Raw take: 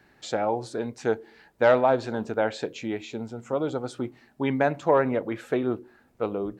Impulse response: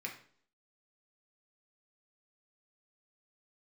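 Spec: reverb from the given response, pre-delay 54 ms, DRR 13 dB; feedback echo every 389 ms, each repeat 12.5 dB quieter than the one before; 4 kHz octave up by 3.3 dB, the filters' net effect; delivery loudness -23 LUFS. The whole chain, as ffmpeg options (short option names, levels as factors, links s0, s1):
-filter_complex "[0:a]equalizer=f=4000:t=o:g=4,aecho=1:1:389|778|1167:0.237|0.0569|0.0137,asplit=2[s0][s1];[1:a]atrim=start_sample=2205,adelay=54[s2];[s1][s2]afir=irnorm=-1:irlink=0,volume=0.211[s3];[s0][s3]amix=inputs=2:normalize=0,volume=1.5"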